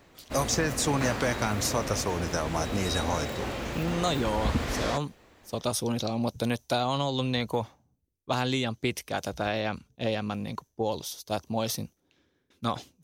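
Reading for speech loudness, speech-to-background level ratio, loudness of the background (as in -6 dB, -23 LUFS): -30.5 LUFS, 3.0 dB, -33.5 LUFS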